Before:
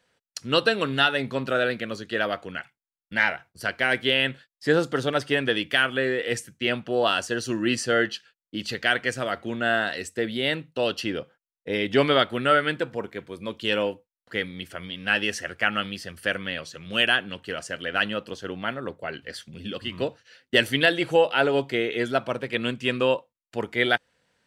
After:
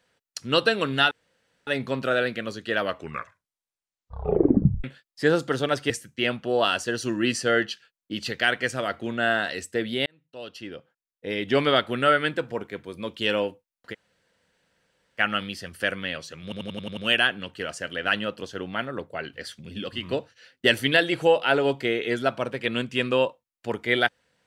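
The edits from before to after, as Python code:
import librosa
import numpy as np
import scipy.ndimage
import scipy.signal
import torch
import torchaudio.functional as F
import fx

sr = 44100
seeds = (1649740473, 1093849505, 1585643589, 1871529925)

y = fx.edit(x, sr, fx.insert_room_tone(at_s=1.11, length_s=0.56),
    fx.tape_stop(start_s=2.21, length_s=2.07),
    fx.cut(start_s=5.34, length_s=0.99),
    fx.fade_in_span(start_s=10.49, length_s=1.81),
    fx.room_tone_fill(start_s=14.36, length_s=1.26, crossfade_s=0.04),
    fx.stutter(start_s=16.86, slice_s=0.09, count=7), tone=tone)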